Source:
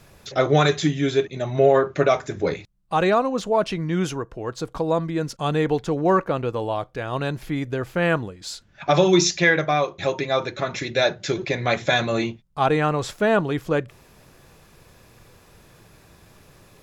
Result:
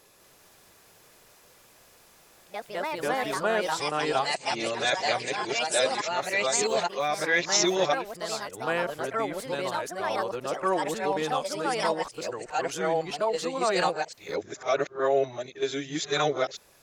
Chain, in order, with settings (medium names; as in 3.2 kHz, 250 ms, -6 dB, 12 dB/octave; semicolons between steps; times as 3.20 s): reverse the whole clip; tone controls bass -13 dB, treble +6 dB; ever faster or slower copies 199 ms, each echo +3 st, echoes 2; trim -6.5 dB